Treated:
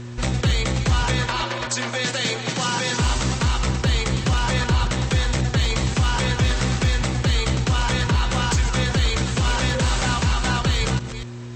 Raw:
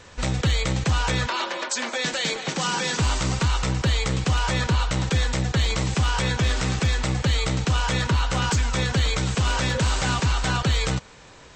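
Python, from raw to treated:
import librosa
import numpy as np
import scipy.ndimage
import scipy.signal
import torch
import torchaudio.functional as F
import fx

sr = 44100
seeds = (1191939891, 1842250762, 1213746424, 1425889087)

y = fx.reverse_delay(x, sr, ms=239, wet_db=-11.0)
y = fx.dmg_buzz(y, sr, base_hz=120.0, harmonics=3, level_db=-36.0, tilt_db=-6, odd_only=False)
y = y * librosa.db_to_amplitude(1.5)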